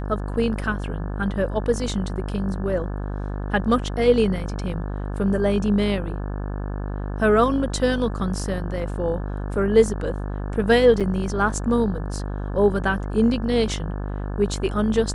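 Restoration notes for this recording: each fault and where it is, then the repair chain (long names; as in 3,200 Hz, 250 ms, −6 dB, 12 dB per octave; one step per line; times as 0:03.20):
mains buzz 50 Hz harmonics 35 −28 dBFS
0:11.00–0:11.01: drop-out 6.9 ms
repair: hum removal 50 Hz, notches 35
repair the gap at 0:11.00, 6.9 ms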